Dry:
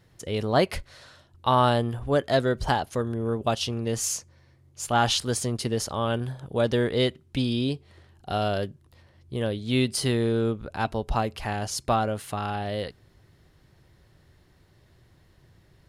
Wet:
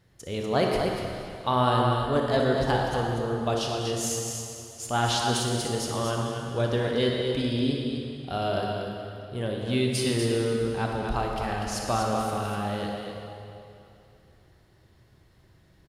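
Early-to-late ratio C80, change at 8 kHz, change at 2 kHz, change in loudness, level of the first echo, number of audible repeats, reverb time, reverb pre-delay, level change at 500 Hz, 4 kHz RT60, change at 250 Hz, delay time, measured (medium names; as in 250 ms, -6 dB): 0.5 dB, -1.0 dB, -0.5 dB, -1.0 dB, -11.5 dB, 2, 2.8 s, 30 ms, 0.0 dB, 2.4 s, -0.5 dB, 60 ms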